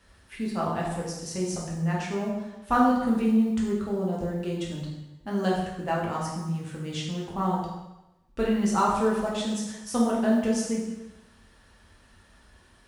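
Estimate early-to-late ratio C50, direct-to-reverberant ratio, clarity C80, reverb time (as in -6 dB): 2.5 dB, -5.0 dB, 5.0 dB, 1.0 s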